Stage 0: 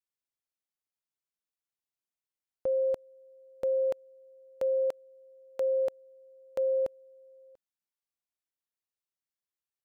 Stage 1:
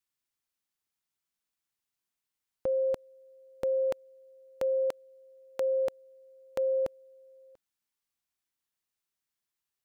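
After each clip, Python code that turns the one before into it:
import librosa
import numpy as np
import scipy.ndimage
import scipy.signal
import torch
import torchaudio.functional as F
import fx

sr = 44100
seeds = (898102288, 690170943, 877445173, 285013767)

y = fx.peak_eq(x, sr, hz=540.0, db=-6.0, octaves=0.77)
y = y * 10.0 ** (5.5 / 20.0)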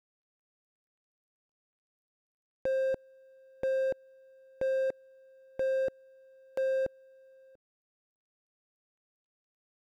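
y = scipy.ndimage.median_filter(x, 41, mode='constant')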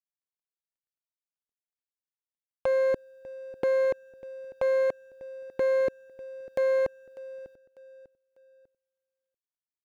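y = fx.echo_feedback(x, sr, ms=597, feedback_pct=37, wet_db=-18.5)
y = fx.doppler_dist(y, sr, depth_ms=0.48)
y = y * 10.0 ** (5.5 / 20.0)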